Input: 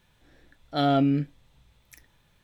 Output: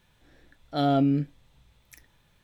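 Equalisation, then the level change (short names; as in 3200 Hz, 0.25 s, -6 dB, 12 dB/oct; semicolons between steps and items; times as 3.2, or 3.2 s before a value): dynamic EQ 2100 Hz, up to -6 dB, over -42 dBFS, Q 0.78; 0.0 dB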